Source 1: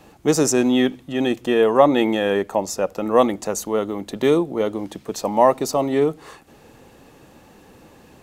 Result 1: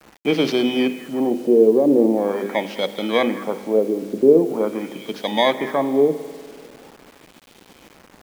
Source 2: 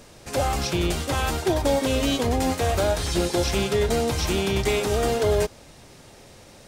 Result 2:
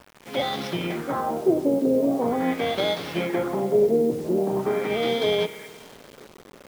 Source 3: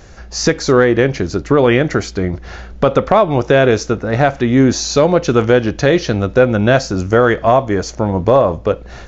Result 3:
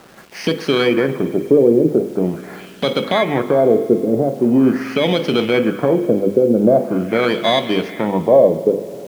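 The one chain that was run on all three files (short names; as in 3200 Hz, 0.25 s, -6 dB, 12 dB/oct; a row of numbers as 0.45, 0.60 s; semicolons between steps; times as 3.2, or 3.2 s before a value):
FFT order left unsorted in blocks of 16 samples; HPF 170 Hz 24 dB/oct; low shelf 380 Hz +6.5 dB; notches 50/100/150/200/250/300/350/400/450/500 Hz; limiter -2.5 dBFS; on a send: delay with a stepping band-pass 0.206 s, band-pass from 1600 Hz, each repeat 0.7 oct, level -11 dB; on the sum: LFO low-pass sine 0.43 Hz 400–3600 Hz; spring tank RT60 2.4 s, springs 49 ms, chirp 55 ms, DRR 14 dB; bit-crush 7-bit; gain -3 dB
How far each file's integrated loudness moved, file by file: +0.5, -0.5, -2.0 LU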